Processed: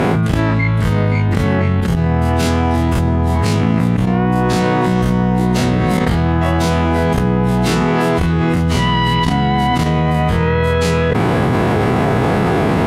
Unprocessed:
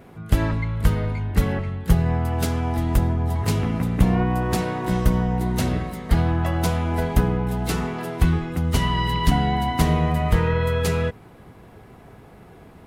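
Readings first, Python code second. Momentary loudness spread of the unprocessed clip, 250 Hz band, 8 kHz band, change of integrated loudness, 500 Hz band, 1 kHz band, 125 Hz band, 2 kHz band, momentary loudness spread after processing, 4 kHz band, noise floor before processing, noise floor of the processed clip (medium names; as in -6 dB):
5 LU, +9.5 dB, +5.0 dB, +7.5 dB, +10.5 dB, +9.5 dB, +7.0 dB, +10.5 dB, 1 LU, +8.5 dB, -47 dBFS, -15 dBFS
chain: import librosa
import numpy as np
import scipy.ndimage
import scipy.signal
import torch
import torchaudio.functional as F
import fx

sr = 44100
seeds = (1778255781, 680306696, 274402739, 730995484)

y = fx.spec_dilate(x, sr, span_ms=60)
y = scipy.signal.sosfilt(scipy.signal.butter(2, 96.0, 'highpass', fs=sr, output='sos'), y)
y = fx.level_steps(y, sr, step_db=15)
y = fx.air_absorb(y, sr, metres=52.0)
y = fx.env_flatten(y, sr, amount_pct=100)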